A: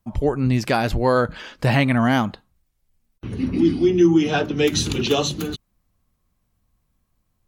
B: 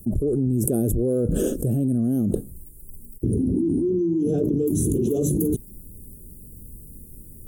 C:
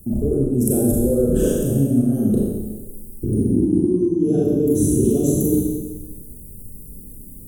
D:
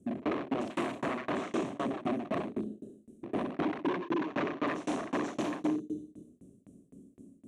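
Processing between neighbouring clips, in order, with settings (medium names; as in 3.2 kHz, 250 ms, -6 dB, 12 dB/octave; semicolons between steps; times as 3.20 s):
elliptic band-stop 410–9200 Hz, stop band 40 dB; bass shelf 340 Hz -8.5 dB; level flattener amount 100%; trim -6 dB
Schroeder reverb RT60 1.3 s, combs from 29 ms, DRR -4.5 dB; trim -1 dB
wavefolder -19.5 dBFS; tremolo saw down 3.9 Hz, depth 100%; cabinet simulation 270–5200 Hz, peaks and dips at 280 Hz +4 dB, 480 Hz -9 dB, 860 Hz -10 dB, 1.4 kHz -7 dB, 2.5 kHz +3 dB, 4.9 kHz -10 dB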